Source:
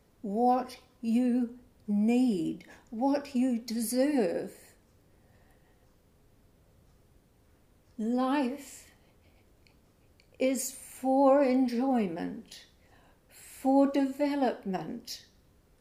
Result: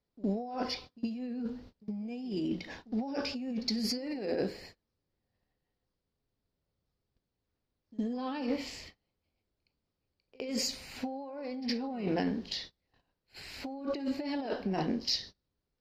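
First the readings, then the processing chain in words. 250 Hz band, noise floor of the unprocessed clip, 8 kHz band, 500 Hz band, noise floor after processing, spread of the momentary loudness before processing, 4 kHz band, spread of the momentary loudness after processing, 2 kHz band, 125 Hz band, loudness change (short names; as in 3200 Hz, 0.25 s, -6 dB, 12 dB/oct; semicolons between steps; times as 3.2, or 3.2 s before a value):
-6.5 dB, -65 dBFS, -3.5 dB, -7.5 dB, under -85 dBFS, 16 LU, +8.5 dB, 11 LU, -1.5 dB, 0.0 dB, -6.5 dB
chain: gate -55 dBFS, range -28 dB; resonant high shelf 6700 Hz -13.5 dB, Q 3; negative-ratio compressor -35 dBFS, ratio -1; pre-echo 65 ms -21 dB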